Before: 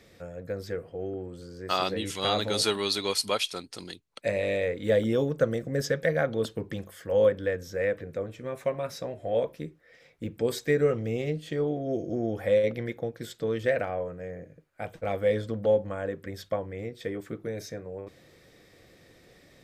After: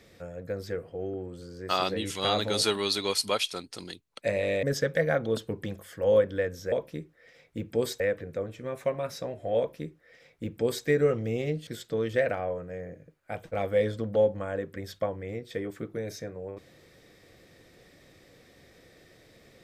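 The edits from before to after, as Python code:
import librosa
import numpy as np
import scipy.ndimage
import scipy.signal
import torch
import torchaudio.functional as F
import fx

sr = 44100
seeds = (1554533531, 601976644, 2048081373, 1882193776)

y = fx.edit(x, sr, fx.cut(start_s=4.63, length_s=1.08),
    fx.duplicate(start_s=9.38, length_s=1.28, to_s=7.8),
    fx.cut(start_s=11.47, length_s=1.7), tone=tone)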